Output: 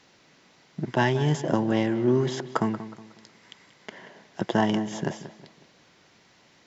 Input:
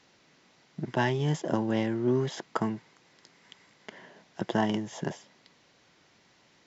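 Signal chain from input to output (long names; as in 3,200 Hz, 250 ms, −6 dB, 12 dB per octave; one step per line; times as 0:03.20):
on a send: feedback echo with a low-pass in the loop 183 ms, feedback 37%, low-pass 3,200 Hz, level −13 dB
on the sum: level +4 dB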